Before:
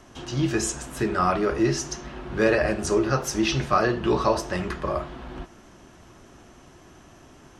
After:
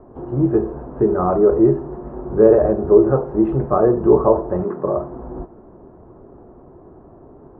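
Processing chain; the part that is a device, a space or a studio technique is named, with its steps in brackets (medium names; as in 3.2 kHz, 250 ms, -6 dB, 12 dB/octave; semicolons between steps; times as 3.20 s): 4.63–5.12 s: high-pass 190 Hz -> 57 Hz 24 dB/octave; under water (low-pass 1 kHz 24 dB/octave; peaking EQ 430 Hz +8 dB 0.59 oct); trim +5 dB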